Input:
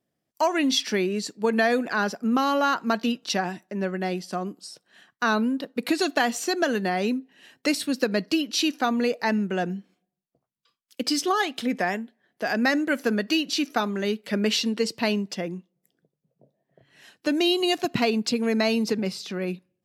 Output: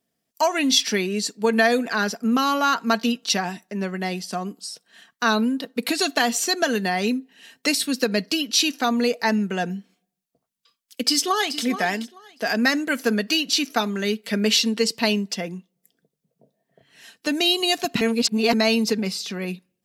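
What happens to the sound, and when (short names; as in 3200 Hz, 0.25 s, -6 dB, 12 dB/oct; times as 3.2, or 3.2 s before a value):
11.06–11.62 echo throw 0.43 s, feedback 20%, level -11.5 dB
18.01–18.53 reverse
whole clip: high shelf 2500 Hz +8 dB; comb 4.4 ms, depth 37%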